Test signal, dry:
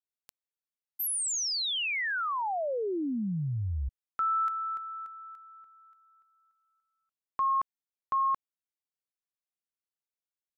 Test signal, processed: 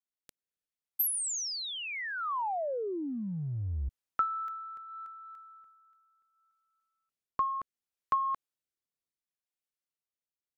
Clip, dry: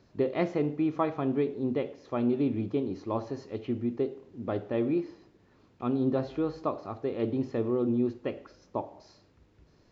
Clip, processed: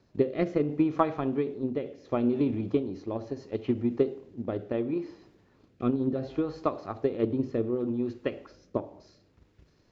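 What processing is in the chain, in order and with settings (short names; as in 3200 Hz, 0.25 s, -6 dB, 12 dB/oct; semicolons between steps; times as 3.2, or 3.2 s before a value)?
rotary speaker horn 0.7 Hz; transient shaper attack +9 dB, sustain +5 dB; gain -1.5 dB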